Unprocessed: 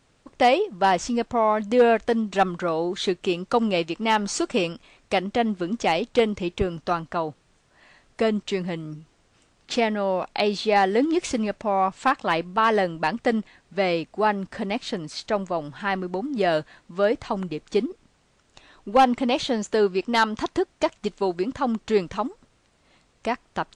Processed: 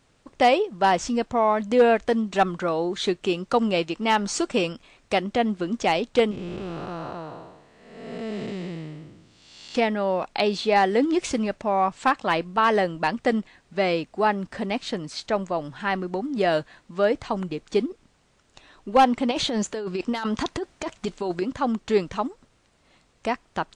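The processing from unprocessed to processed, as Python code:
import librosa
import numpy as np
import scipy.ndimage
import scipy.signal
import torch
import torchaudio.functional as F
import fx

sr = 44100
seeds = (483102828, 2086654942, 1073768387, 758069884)

y = fx.spec_blur(x, sr, span_ms=460.0, at=(6.31, 9.75))
y = fx.over_compress(y, sr, threshold_db=-26.0, ratio=-1.0, at=(19.31, 21.42))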